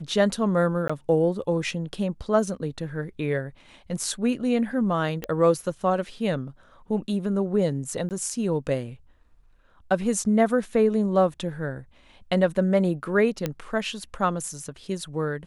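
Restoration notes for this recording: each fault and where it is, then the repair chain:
0.88–0.90 s: dropout 15 ms
5.24 s: pop -15 dBFS
8.09–8.11 s: dropout 18 ms
13.46 s: pop -12 dBFS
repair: de-click; interpolate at 0.88 s, 15 ms; interpolate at 8.09 s, 18 ms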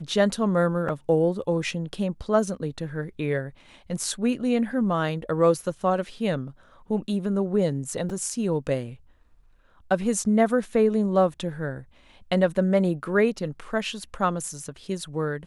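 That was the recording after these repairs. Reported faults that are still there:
nothing left

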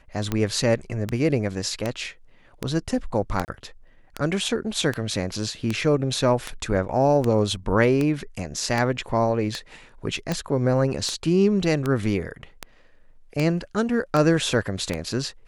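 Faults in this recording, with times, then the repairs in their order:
tick 78 rpm -11 dBFS
3.45–3.48 s: dropout 29 ms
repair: de-click; interpolate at 3.45 s, 29 ms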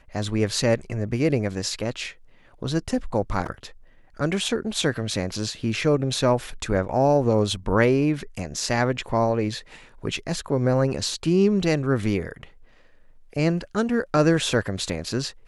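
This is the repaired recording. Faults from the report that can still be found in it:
nothing left

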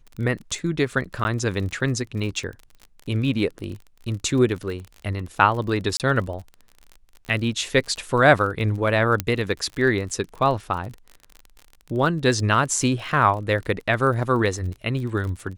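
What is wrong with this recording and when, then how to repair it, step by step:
crackle 40 per s -31 dBFS
1.24–1.25 s: dropout 10 ms
5.97–6.00 s: dropout 28 ms
9.20 s: pop -7 dBFS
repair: de-click; interpolate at 1.24 s, 10 ms; interpolate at 5.97 s, 28 ms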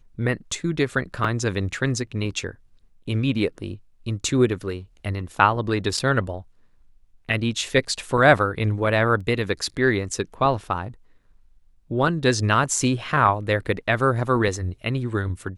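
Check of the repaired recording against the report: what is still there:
9.20 s: pop

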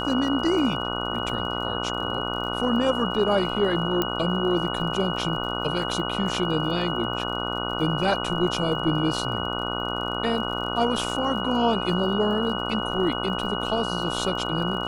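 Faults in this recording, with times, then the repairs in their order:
buzz 60 Hz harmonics 25 -30 dBFS
crackle 43 per s -35 dBFS
whine 2.9 kHz -31 dBFS
4.02 s: pop -9 dBFS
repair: de-click; band-stop 2.9 kHz, Q 30; de-hum 60 Hz, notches 25

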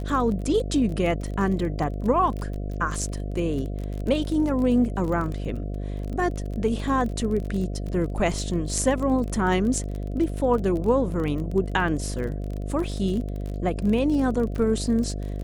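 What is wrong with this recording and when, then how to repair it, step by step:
buzz 50 Hz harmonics 14 -30 dBFS
crackle 27 per s -30 dBFS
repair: de-click; de-hum 50 Hz, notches 14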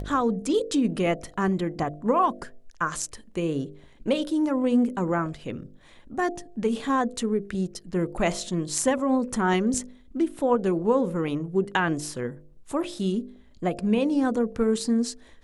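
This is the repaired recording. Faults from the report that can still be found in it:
nothing left

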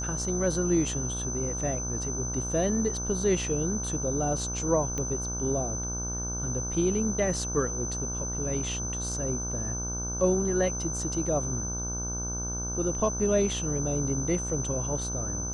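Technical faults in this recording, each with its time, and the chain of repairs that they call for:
buzz 60 Hz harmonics 26 -35 dBFS
whine 6.1 kHz -33 dBFS
4.98 s: pop -19 dBFS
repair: de-click; de-hum 60 Hz, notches 26; band-stop 6.1 kHz, Q 30

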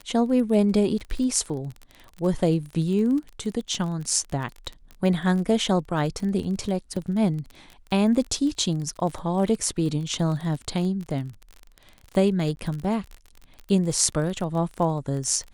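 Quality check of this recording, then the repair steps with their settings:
crackle 31 per s -31 dBFS
6.96 s: dropout 4.5 ms
12.56–12.57 s: dropout 11 ms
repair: de-click; interpolate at 6.96 s, 4.5 ms; interpolate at 12.56 s, 11 ms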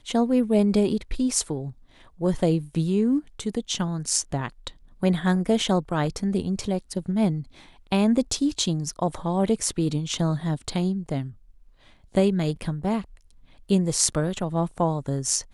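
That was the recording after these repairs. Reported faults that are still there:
nothing left

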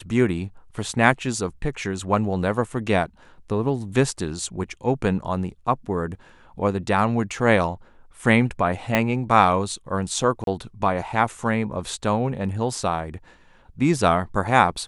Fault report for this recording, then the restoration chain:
8.95 s: pop -5 dBFS
10.44–10.47 s: dropout 32 ms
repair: de-click; interpolate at 10.44 s, 32 ms

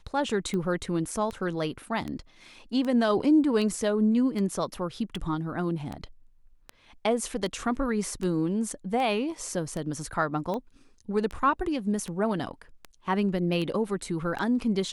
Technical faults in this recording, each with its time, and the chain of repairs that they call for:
tick 78 rpm -21 dBFS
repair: de-click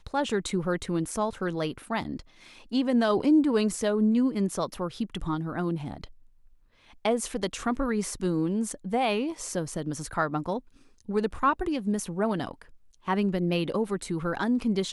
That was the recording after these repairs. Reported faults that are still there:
nothing left

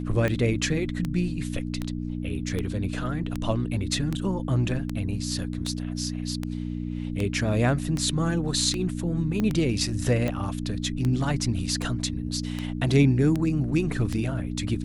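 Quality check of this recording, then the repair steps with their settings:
hum 60 Hz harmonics 5 -31 dBFS
tick 78 rpm -15 dBFS
9.40 s: pop -15 dBFS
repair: de-click; de-hum 60 Hz, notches 5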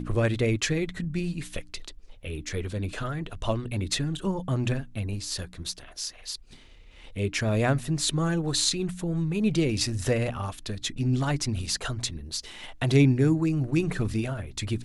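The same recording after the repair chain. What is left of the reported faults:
9.40 s: pop

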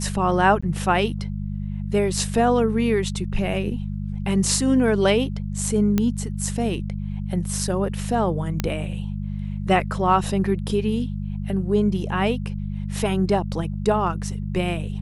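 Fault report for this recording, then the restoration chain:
hum 50 Hz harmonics 4 -28 dBFS
0.61–0.62 s: dropout 15 ms
5.98 s: pop -8 dBFS
8.60 s: pop -8 dBFS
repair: de-click; de-hum 50 Hz, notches 4; interpolate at 0.61 s, 15 ms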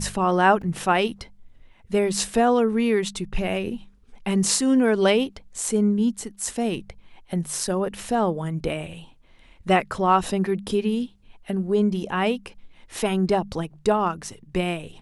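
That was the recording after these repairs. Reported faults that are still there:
nothing left

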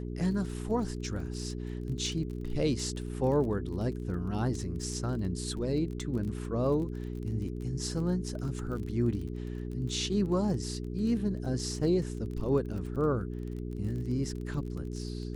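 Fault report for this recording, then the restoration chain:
crackle 29 per s -38 dBFS
hum 60 Hz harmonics 7 -37 dBFS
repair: de-click; de-hum 60 Hz, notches 7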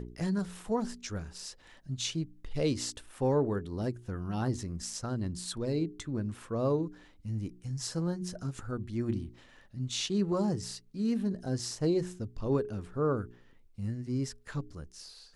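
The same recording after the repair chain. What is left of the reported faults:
nothing left

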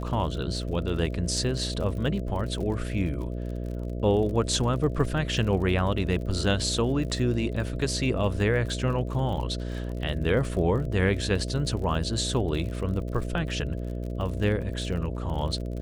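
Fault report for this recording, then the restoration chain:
buzz 60 Hz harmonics 11 -32 dBFS
crackle 43 per s -35 dBFS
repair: de-click; de-hum 60 Hz, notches 11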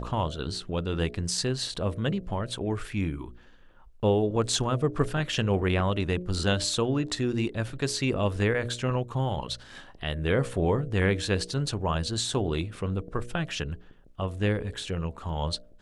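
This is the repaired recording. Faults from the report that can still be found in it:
nothing left

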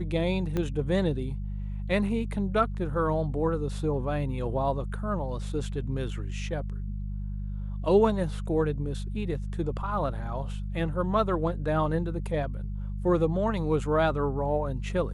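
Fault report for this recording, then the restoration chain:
hum 50 Hz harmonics 4 -33 dBFS
0.57 s: pop -17 dBFS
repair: de-click; de-hum 50 Hz, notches 4

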